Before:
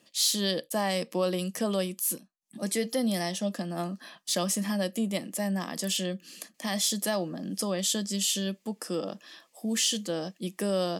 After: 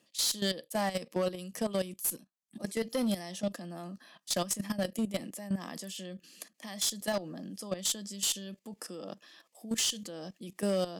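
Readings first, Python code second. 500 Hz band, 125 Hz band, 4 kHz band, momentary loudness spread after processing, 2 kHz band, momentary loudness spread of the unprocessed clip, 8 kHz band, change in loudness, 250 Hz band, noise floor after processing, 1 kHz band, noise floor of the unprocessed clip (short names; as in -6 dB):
-4.5 dB, -5.5 dB, -4.5 dB, 15 LU, -5.0 dB, 10 LU, -4.0 dB, -4.0 dB, -5.0 dB, -74 dBFS, -4.5 dB, -69 dBFS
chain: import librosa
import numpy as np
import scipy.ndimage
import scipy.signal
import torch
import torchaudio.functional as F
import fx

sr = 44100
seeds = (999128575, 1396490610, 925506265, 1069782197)

y = fx.level_steps(x, sr, step_db=14)
y = fx.clip_asym(y, sr, top_db=-26.0, bottom_db=-21.5)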